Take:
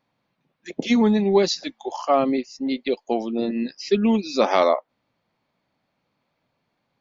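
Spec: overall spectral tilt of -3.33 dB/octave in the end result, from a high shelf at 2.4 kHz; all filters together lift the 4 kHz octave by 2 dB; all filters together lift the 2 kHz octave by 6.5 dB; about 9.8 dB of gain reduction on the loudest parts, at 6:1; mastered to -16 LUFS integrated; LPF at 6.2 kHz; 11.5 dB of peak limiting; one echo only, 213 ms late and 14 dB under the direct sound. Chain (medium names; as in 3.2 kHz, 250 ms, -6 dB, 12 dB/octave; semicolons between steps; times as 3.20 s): low-pass 6.2 kHz; peaking EQ 2 kHz +9 dB; treble shelf 2.4 kHz -6 dB; peaking EQ 4 kHz +6 dB; compression 6:1, threshold -23 dBFS; peak limiter -21 dBFS; delay 213 ms -14 dB; trim +15 dB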